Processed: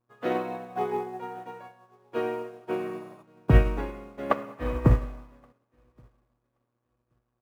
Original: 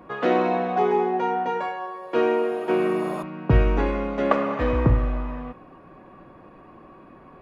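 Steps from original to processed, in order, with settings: feedback echo 1.125 s, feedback 34%, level -15.5 dB; buzz 120 Hz, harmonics 14, -42 dBFS -6 dB/oct; in parallel at -12 dB: bit-crush 6-bit; on the sum: upward expander 2.5:1, over -38 dBFS

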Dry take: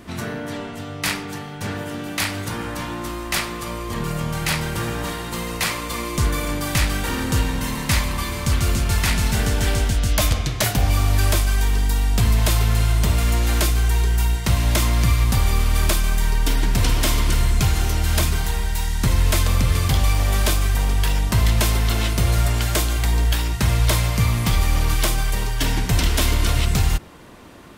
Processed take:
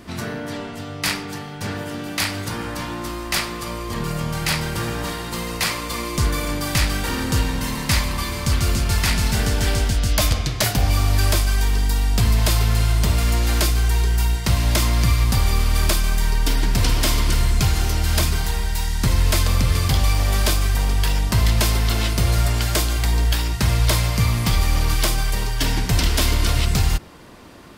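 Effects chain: bell 4800 Hz +4.5 dB 0.35 oct

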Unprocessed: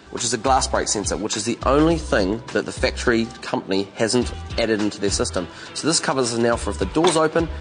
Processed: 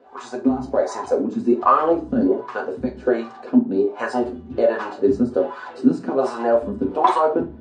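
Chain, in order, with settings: AGC; wah 1.3 Hz 200–1100 Hz, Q 4; reverb RT60 0.35 s, pre-delay 4 ms, DRR -0.5 dB; gain +3 dB

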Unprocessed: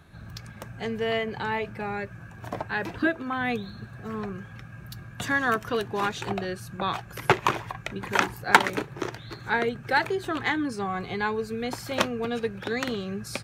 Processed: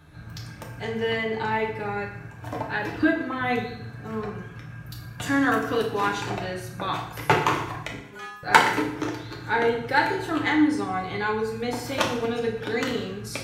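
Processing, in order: 7.95–8.43 metallic resonator 200 Hz, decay 0.69 s, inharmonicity 0.002; FDN reverb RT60 0.75 s, low-frequency decay 1.05×, high-frequency decay 0.9×, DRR -1 dB; gain -1.5 dB

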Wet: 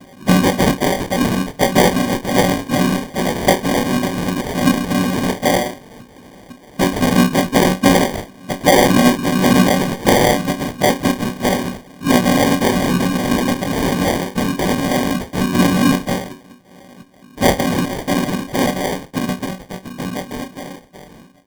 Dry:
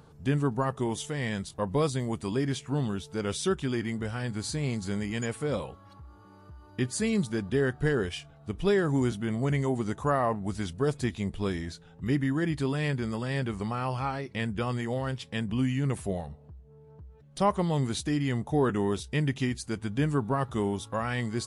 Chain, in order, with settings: ending faded out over 5.49 s; noise vocoder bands 4; resonator bank F#3 sus4, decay 0.23 s; sample-and-hold 33×; maximiser +30 dB; gain -1 dB

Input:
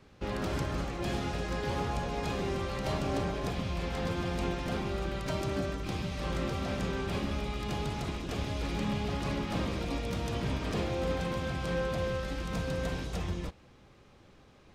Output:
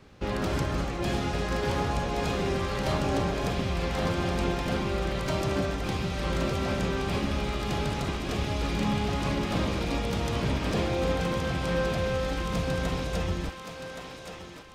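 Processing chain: thinning echo 1.122 s, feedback 38%, high-pass 470 Hz, level -6 dB; gain +4.5 dB

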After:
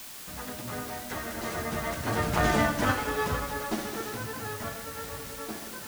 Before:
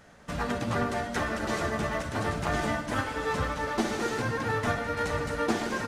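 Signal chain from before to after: Doppler pass-by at 2.63, 14 m/s, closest 5.8 m; requantised 8-bit, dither triangular; gain +5 dB

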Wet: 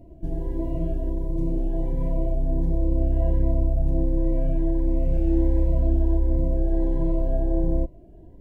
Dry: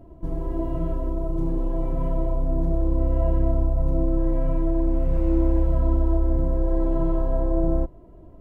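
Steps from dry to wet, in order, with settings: Butterworth band-stop 1200 Hz, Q 1.9; cascading phaser rising 1.4 Hz

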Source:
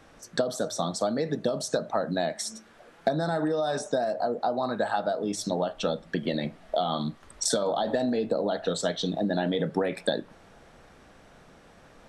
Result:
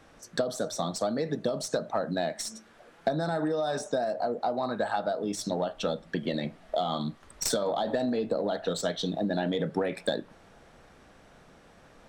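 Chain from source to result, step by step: tracing distortion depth 0.025 ms; in parallel at -10.5 dB: one-sided clip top -22.5 dBFS; on the sum: gain -4 dB

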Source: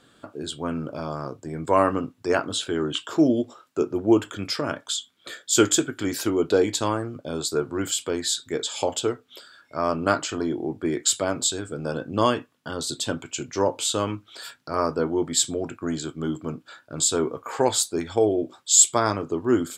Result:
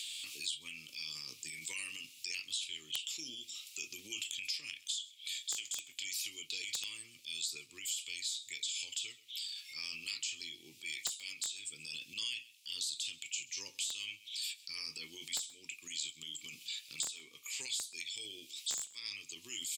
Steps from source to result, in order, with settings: elliptic high-pass 2400 Hz, stop band 40 dB; transient shaper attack -6 dB, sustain +7 dB; added harmonics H 3 -11 dB, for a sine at 2 dBFS; compressor 20:1, threshold -47 dBFS, peak gain reduction 23 dB; wrapped overs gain 37.5 dB; echo 0.129 s -23.5 dB; three-band squash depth 100%; gain +14 dB

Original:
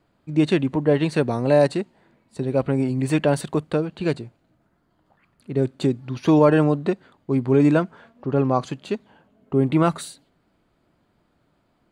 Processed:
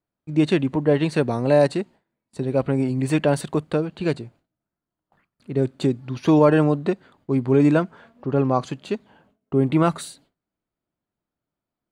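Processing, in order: gate with hold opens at -47 dBFS

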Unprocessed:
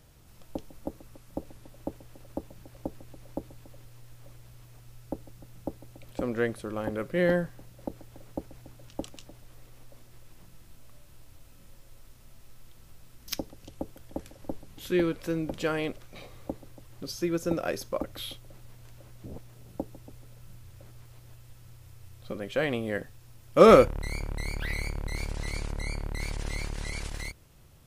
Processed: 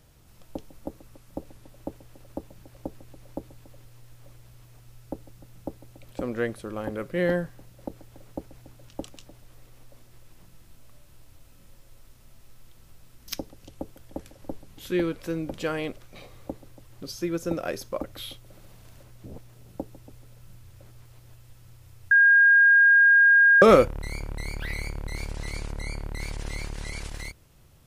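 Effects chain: 18.39–19.03 flutter echo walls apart 11.9 m, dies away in 1.2 s; 22.11–23.62 bleep 1620 Hz -13 dBFS

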